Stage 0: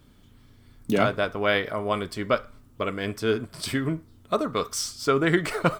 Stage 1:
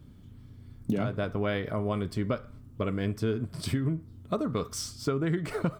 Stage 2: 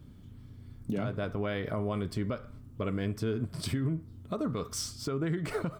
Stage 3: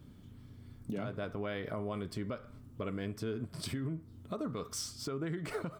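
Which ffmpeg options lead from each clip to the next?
ffmpeg -i in.wav -af "equalizer=frequency=110:width=0.34:gain=14.5,acompressor=threshold=-18dB:ratio=10,volume=-6.5dB" out.wav
ffmpeg -i in.wav -af "alimiter=limit=-22.5dB:level=0:latency=1:release=95" out.wav
ffmpeg -i in.wav -filter_complex "[0:a]lowshelf=frequency=120:gain=-7,asplit=2[link_01][link_02];[link_02]acompressor=threshold=-42dB:ratio=6,volume=1dB[link_03];[link_01][link_03]amix=inputs=2:normalize=0,volume=-6.5dB" out.wav

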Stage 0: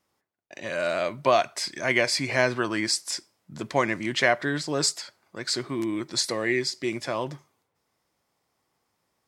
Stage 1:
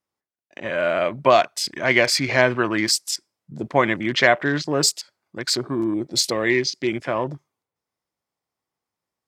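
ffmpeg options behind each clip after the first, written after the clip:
ffmpeg -i in.wav -af "afwtdn=0.0126,volume=5.5dB" out.wav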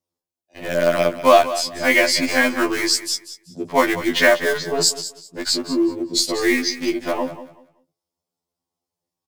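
ffmpeg -i in.wav -filter_complex "[0:a]acrossover=split=310|1100|2800[link_01][link_02][link_03][link_04];[link_03]acrusher=bits=5:dc=4:mix=0:aa=0.000001[link_05];[link_01][link_02][link_05][link_04]amix=inputs=4:normalize=0,aecho=1:1:190|380|570:0.211|0.0486|0.0112,afftfilt=real='re*2*eq(mod(b,4),0)':imag='im*2*eq(mod(b,4),0)':win_size=2048:overlap=0.75,volume=4dB" out.wav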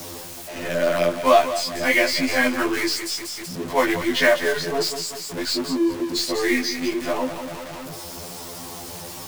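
ffmpeg -i in.wav -filter_complex "[0:a]aeval=exprs='val(0)+0.5*0.0596*sgn(val(0))':channel_layout=same,flanger=delay=6.3:depth=5.8:regen=-42:speed=1.4:shape=triangular,acrossover=split=180|850|5200[link_01][link_02][link_03][link_04];[link_04]aeval=exprs='0.0422*(abs(mod(val(0)/0.0422+3,4)-2)-1)':channel_layout=same[link_05];[link_01][link_02][link_03][link_05]amix=inputs=4:normalize=0" out.wav

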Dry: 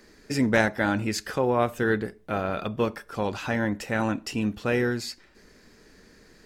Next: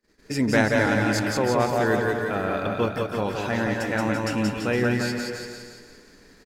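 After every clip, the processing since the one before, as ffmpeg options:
ffmpeg -i in.wav -filter_complex "[0:a]asplit=2[link_01][link_02];[link_02]aecho=0:1:180|333|463|573.6|667.6:0.631|0.398|0.251|0.158|0.1[link_03];[link_01][link_03]amix=inputs=2:normalize=0,agate=range=-27dB:threshold=-52dB:ratio=16:detection=peak,asplit=2[link_04][link_05];[link_05]aecho=0:1:173|346|519|692|865|1038:0.422|0.215|0.11|0.0559|0.0285|0.0145[link_06];[link_04][link_06]amix=inputs=2:normalize=0" out.wav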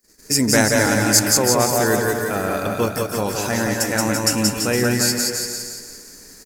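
ffmpeg -i in.wav -af "aexciter=amount=7.5:drive=4.6:freq=5000,volume=3.5dB" out.wav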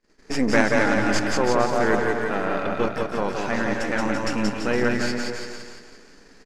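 ffmpeg -i in.wav -af "aeval=exprs='if(lt(val(0),0),0.251*val(0),val(0))':channel_layout=same,lowpass=2900,equalizer=frequency=84:width=1.8:gain=-10.5,volume=1.5dB" out.wav

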